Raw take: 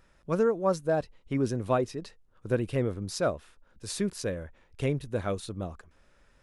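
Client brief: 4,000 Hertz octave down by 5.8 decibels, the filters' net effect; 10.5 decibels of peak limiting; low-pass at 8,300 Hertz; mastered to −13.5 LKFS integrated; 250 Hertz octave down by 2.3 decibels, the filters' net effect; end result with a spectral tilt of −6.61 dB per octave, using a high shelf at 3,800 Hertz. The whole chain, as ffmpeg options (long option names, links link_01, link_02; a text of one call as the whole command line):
ffmpeg -i in.wav -af "lowpass=8300,equalizer=frequency=250:width_type=o:gain=-3,highshelf=frequency=3800:gain=-3.5,equalizer=frequency=4000:width_type=o:gain=-4.5,volume=23.5dB,alimiter=limit=-2dB:level=0:latency=1" out.wav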